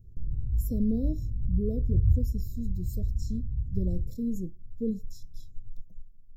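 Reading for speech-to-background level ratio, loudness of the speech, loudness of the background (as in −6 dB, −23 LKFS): −3.0 dB, −35.0 LKFS, −32.0 LKFS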